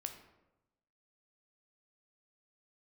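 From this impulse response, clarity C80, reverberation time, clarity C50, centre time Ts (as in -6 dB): 11.5 dB, 0.95 s, 9.0 dB, 17 ms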